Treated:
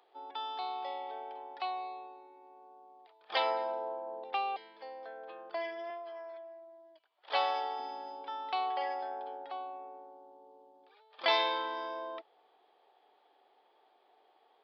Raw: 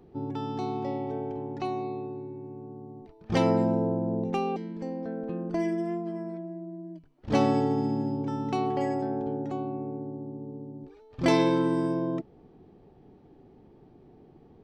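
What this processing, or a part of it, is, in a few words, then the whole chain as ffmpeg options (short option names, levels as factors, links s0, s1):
musical greeting card: -filter_complex "[0:a]aresample=11025,aresample=44100,highpass=f=670:w=0.5412,highpass=f=670:w=1.3066,equalizer=f=3400:t=o:w=0.27:g=9,asettb=1/sr,asplit=3[s0][s1][s2];[s0]atrim=end=5.904[s3];[s1]atrim=start=5.9:end=7.8,asetpts=PTS-STARTPTS,afade=t=in:d=0.004:c=qsin,afade=t=out:st=1.896:d=0.004:c=qsin,highpass=380[s4];[s2]atrim=start=7.796[s5];[s3][s4]acrossfade=d=0.004:c1=hsin:c2=qsin[s6];[s6][s5]acrossfade=d=0.004:c1=qsin:c2=hsin"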